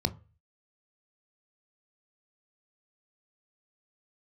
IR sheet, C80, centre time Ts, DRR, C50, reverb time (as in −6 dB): 26.0 dB, 5 ms, 10.5 dB, 20.5 dB, 0.35 s